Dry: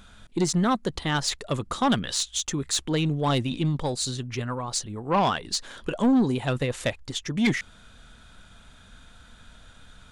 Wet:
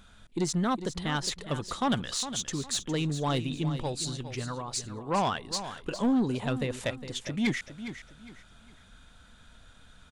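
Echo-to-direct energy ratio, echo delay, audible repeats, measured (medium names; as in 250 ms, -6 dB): -11.0 dB, 409 ms, 3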